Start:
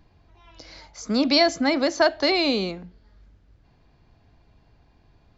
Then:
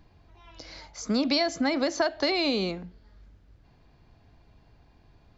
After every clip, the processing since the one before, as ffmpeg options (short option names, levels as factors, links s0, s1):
-af "acompressor=threshold=0.0794:ratio=6"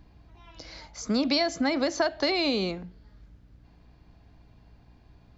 -af "aeval=exprs='val(0)+0.00158*(sin(2*PI*60*n/s)+sin(2*PI*2*60*n/s)/2+sin(2*PI*3*60*n/s)/3+sin(2*PI*4*60*n/s)/4+sin(2*PI*5*60*n/s)/5)':c=same"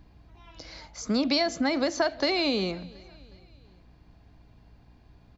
-af "aecho=1:1:363|726|1089:0.0708|0.0354|0.0177"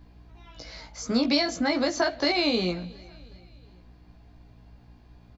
-filter_complex "[0:a]asplit=2[s0][s1];[s1]adelay=17,volume=0.708[s2];[s0][s2]amix=inputs=2:normalize=0"